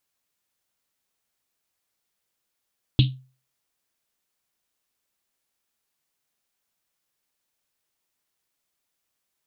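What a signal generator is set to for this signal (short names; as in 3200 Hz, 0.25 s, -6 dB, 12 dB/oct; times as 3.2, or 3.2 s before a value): Risset drum, pitch 130 Hz, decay 0.37 s, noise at 3400 Hz, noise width 1300 Hz, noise 20%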